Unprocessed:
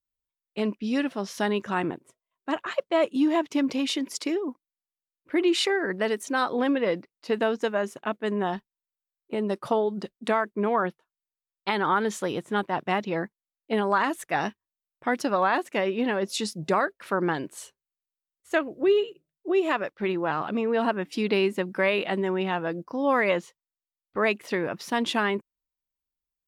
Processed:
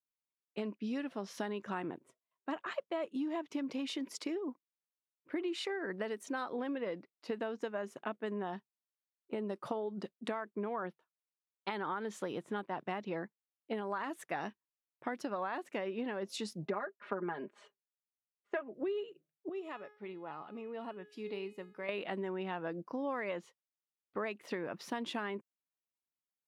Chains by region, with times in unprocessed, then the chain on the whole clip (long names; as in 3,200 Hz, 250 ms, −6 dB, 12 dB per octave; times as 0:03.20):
0:16.65–0:18.74: noise gate −48 dBFS, range −9 dB + band-pass filter 200–2,300 Hz + comb filter 4.9 ms, depth 88%
0:19.49–0:21.89: notch filter 1,600 Hz, Q 10 + tuned comb filter 420 Hz, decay 0.52 s, mix 80%
whole clip: downward compressor, threshold −29 dBFS; high-pass filter 140 Hz; high-shelf EQ 3,800 Hz −7 dB; level −5 dB